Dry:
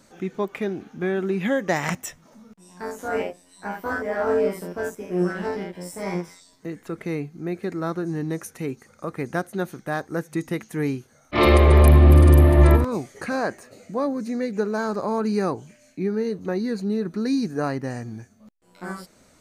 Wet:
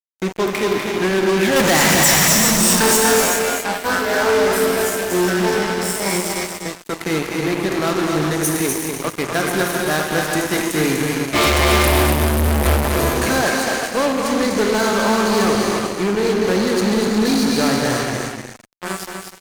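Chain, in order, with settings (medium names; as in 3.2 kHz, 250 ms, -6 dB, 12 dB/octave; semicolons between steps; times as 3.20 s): treble shelf 2.4 kHz +9 dB; 1.56–2.97 s: power-law waveshaper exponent 0.35; gated-style reverb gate 440 ms flat, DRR 0.5 dB; fuzz box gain 24 dB, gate -31 dBFS; tone controls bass -3 dB, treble +2 dB; delay 246 ms -5.5 dB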